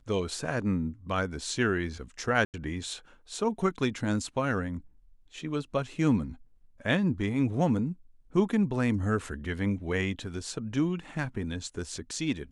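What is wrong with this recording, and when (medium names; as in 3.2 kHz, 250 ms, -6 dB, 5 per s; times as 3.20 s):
2.45–2.54 s: dropout 88 ms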